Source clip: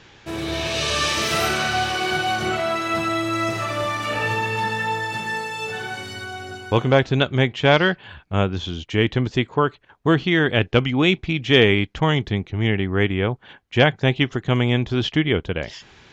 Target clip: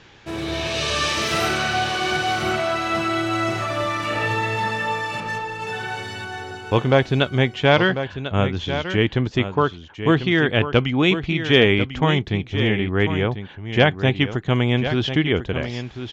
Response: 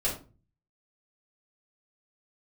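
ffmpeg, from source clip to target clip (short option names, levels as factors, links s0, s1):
-filter_complex "[0:a]highshelf=f=9900:g=-8,asettb=1/sr,asplit=3[s0][s1][s2];[s0]atrim=end=5.204[s3];[s1]atrim=start=5.2:end=5.67,asetpts=PTS-STARTPTS,afade=t=in:d=0.004:c=qsin,afade=t=out:st=0.466:d=0.004:c=qsin,adynamicsmooth=sensitivity=2:basefreq=570[s4];[s2]atrim=start=5.666[s5];[s3][s4]acrossfade=d=0.004:c1=hsin:c2=qsin[s6];[s6][s5]acrossfade=d=0.004:c1=qsin:c2=hsin,aecho=1:1:1045:0.316"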